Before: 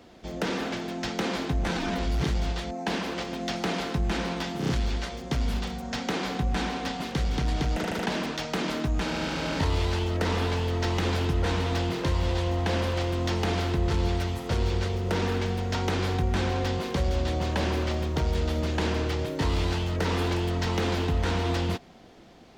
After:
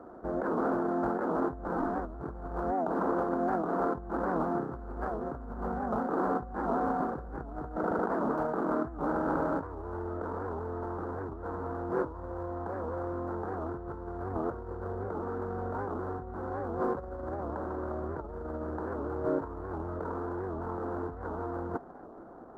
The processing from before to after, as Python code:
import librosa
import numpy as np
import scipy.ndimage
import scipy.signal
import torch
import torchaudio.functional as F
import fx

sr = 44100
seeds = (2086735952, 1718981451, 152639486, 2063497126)

y = scipy.ndimage.median_filter(x, 25, mode='constant')
y = fx.high_shelf_res(y, sr, hz=1900.0, db=-10.5, q=3.0)
y = fx.over_compress(y, sr, threshold_db=-32.0, ratio=-1.0)
y = fx.band_shelf(y, sr, hz=650.0, db=9.0, octaves=2.9)
y = fx.record_warp(y, sr, rpm=78.0, depth_cents=160.0)
y = y * librosa.db_to_amplitude(-8.0)